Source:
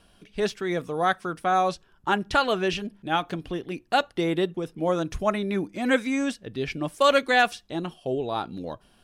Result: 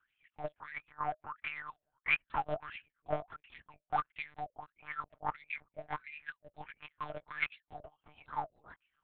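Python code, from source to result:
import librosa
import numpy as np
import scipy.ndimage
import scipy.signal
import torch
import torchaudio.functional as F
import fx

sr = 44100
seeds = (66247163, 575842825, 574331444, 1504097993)

y = fx.low_shelf(x, sr, hz=440.0, db=-6.0)
y = fx.cheby_harmonics(y, sr, harmonics=(6,), levels_db=(-11,), full_scale_db=-7.5)
y = fx.hpss(y, sr, part='harmonic', gain_db=-17)
y = fx.wah_lfo(y, sr, hz=1.5, low_hz=600.0, high_hz=2500.0, q=16.0)
y = fx.lpc_monotone(y, sr, seeds[0], pitch_hz=150.0, order=8)
y = F.gain(torch.from_numpy(y), 5.5).numpy()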